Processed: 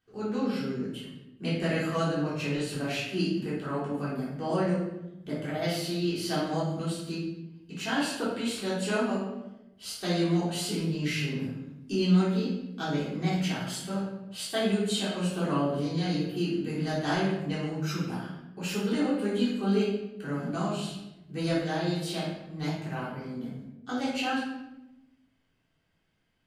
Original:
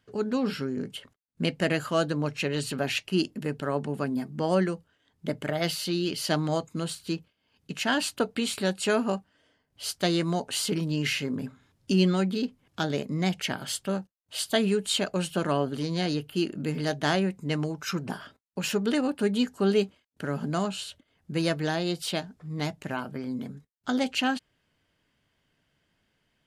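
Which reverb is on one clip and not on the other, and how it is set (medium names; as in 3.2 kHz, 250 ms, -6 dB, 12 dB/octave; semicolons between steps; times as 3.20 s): simulated room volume 350 m³, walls mixed, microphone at 3.6 m; trim -12.5 dB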